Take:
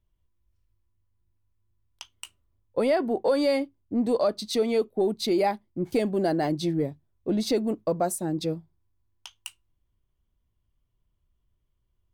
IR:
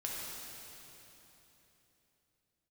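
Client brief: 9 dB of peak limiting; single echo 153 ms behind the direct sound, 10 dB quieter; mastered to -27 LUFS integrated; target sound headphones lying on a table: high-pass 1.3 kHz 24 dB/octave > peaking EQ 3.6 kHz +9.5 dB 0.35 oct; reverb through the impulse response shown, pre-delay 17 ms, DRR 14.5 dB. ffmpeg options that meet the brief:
-filter_complex "[0:a]alimiter=limit=0.0708:level=0:latency=1,aecho=1:1:153:0.316,asplit=2[s0][s1];[1:a]atrim=start_sample=2205,adelay=17[s2];[s1][s2]afir=irnorm=-1:irlink=0,volume=0.15[s3];[s0][s3]amix=inputs=2:normalize=0,highpass=f=1300:w=0.5412,highpass=f=1300:w=1.3066,equalizer=f=3600:t=o:w=0.35:g=9.5,volume=3.16"

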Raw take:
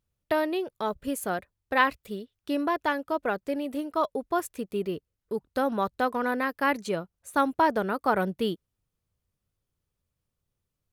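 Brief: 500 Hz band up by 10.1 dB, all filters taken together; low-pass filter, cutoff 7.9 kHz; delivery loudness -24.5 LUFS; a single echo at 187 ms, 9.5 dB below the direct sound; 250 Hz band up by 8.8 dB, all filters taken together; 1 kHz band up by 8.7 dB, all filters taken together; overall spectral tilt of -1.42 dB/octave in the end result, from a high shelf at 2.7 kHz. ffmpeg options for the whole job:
-af "lowpass=7900,equalizer=f=250:t=o:g=7.5,equalizer=f=500:t=o:g=8.5,equalizer=f=1000:t=o:g=8.5,highshelf=f=2700:g=-7.5,aecho=1:1:187:0.335,volume=0.562"

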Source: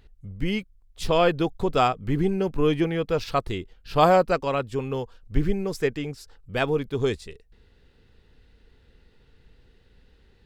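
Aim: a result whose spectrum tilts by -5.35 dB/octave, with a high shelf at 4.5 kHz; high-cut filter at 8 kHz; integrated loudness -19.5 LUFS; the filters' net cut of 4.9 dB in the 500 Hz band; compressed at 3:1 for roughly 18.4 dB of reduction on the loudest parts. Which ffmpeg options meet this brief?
-af "lowpass=8000,equalizer=f=500:t=o:g=-6,highshelf=f=4500:g=-8,acompressor=threshold=0.00891:ratio=3,volume=13.3"

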